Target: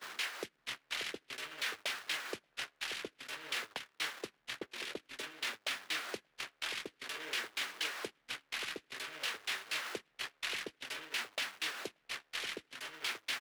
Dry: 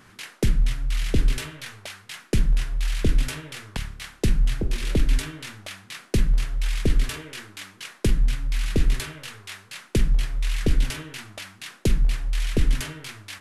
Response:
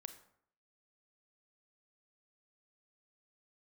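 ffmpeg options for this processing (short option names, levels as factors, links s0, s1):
-filter_complex "[0:a]aeval=exprs='val(0)+0.5*0.0211*sgn(val(0))':c=same,highpass=150,asplit=2[s0][s1];[s1]volume=17.8,asoftclip=hard,volume=0.0562,volume=0.596[s2];[s0][s2]amix=inputs=2:normalize=0,highshelf=f=4400:g=7.5,alimiter=limit=0.168:level=0:latency=1:release=282,acompressor=threshold=0.0316:ratio=16,acrossover=split=380 4700:gain=0.0794 1 0.224[s3][s4][s5];[s3][s4][s5]amix=inputs=3:normalize=0,asplit=2[s6][s7];[s7]adelay=583.1,volume=0.398,highshelf=f=4000:g=-13.1[s8];[s6][s8]amix=inputs=2:normalize=0,agate=range=0.0282:threshold=0.0158:ratio=16:detection=peak"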